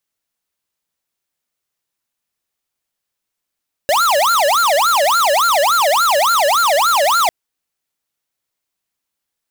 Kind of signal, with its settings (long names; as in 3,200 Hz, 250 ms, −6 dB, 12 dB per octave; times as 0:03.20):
siren wail 559–1,400 Hz 3.5 per second square −13.5 dBFS 3.40 s